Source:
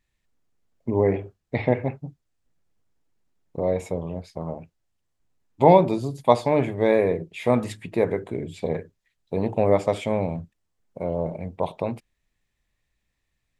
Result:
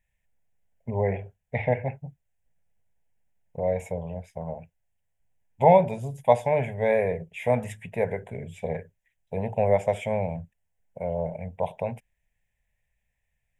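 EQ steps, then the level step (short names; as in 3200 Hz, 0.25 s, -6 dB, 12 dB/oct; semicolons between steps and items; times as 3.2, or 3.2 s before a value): fixed phaser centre 1200 Hz, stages 6; 0.0 dB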